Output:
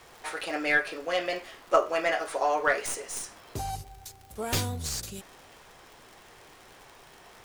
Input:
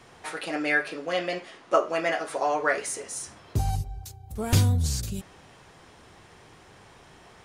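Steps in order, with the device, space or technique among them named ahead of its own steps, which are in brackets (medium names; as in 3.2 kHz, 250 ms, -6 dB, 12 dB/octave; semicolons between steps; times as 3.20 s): tone controls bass -13 dB, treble 0 dB; record under a worn stylus (tracing distortion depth 0.053 ms; crackle 96 per s -40 dBFS; pink noise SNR 29 dB)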